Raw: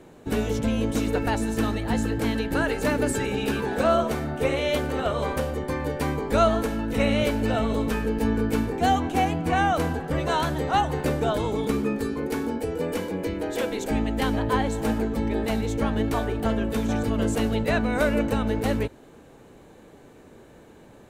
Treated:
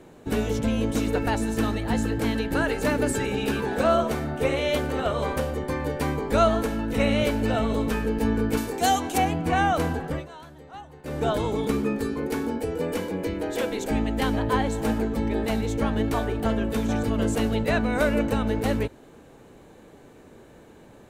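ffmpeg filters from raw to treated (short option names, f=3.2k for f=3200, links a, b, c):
-filter_complex "[0:a]asettb=1/sr,asplit=3[a][b][c];[a]atrim=end=8.574[d];[b]atrim=start=8.57:end=9.18,asetpts=PTS-STARTPTS,afade=t=in:d=0.004:c=qsin,afade=t=out:st=0.606:d=0.004:c=qsin,bass=f=250:g=-8,treble=f=4k:g=12[e];[c]atrim=start=9.176[f];[d][e]acrossfade=d=0.004:c1=hsin:c2=qsin[g];[g][f]acrossfade=d=0.004:c1=qsin:c2=hsin,asplit=3[h][i][j];[h]atrim=end=10.28,asetpts=PTS-STARTPTS,afade=t=out:st=10.06:d=0.22:silence=0.105925[k];[i]atrim=start=10.28:end=11.03,asetpts=PTS-STARTPTS,volume=-19.5dB[l];[j]atrim=start=11.03,asetpts=PTS-STARTPTS,afade=t=in:d=0.22:silence=0.105925[m];[k][l][m]concat=n=3:v=0:a=1"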